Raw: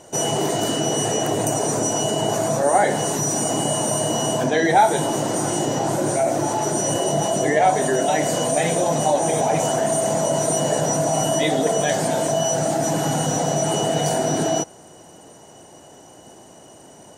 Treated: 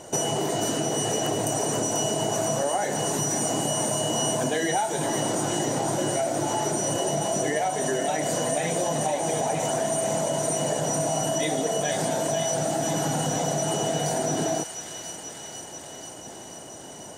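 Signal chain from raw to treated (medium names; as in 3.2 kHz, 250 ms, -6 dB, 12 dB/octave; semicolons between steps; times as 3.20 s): compression 10:1, threshold -25 dBFS, peak gain reduction 15 dB; feedback echo behind a high-pass 488 ms, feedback 72%, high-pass 1.8 kHz, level -6 dB; trim +2.5 dB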